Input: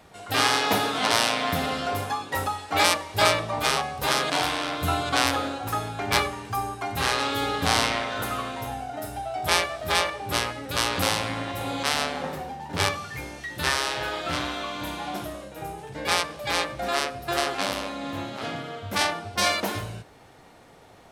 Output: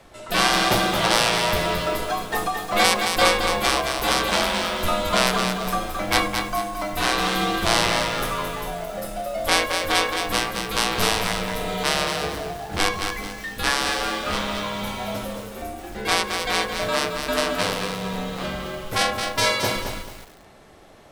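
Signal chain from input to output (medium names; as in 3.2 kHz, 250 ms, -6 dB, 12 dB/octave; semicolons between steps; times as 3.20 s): frequency shift -90 Hz; bit-crushed delay 219 ms, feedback 35%, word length 7-bit, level -5.5 dB; trim +2.5 dB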